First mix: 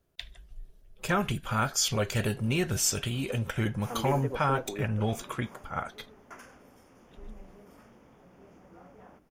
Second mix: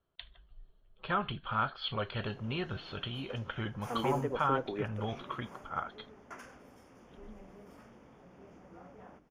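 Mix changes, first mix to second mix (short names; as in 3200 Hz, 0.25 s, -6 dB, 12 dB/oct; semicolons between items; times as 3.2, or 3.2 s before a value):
speech: add rippled Chebyshev low-pass 4400 Hz, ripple 9 dB; master: add high shelf 10000 Hz -8.5 dB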